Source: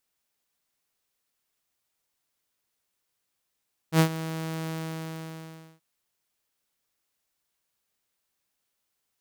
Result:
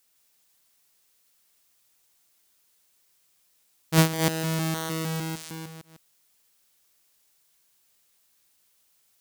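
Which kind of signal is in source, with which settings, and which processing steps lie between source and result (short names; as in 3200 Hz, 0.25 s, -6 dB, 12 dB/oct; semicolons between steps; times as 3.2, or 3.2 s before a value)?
ADSR saw 161 Hz, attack 75 ms, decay 87 ms, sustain -15.5 dB, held 0.77 s, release 1.11 s -12.5 dBFS
reverse delay 0.153 s, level -4 dB; high shelf 3200 Hz +7.5 dB; in parallel at -1 dB: compressor, threshold -35 dBFS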